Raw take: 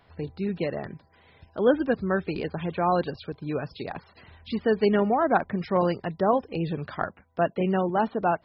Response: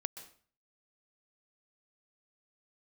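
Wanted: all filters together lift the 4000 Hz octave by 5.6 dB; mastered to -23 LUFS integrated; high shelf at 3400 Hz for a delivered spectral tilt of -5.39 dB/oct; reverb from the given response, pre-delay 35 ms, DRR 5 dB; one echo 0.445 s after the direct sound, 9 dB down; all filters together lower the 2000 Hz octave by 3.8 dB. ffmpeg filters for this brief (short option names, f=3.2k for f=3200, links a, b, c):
-filter_complex "[0:a]equalizer=f=2k:t=o:g=-8.5,highshelf=f=3.4k:g=6.5,equalizer=f=4k:t=o:g=6,aecho=1:1:445:0.355,asplit=2[a][b];[1:a]atrim=start_sample=2205,adelay=35[c];[b][c]afir=irnorm=-1:irlink=0,volume=-4dB[d];[a][d]amix=inputs=2:normalize=0,volume=2dB"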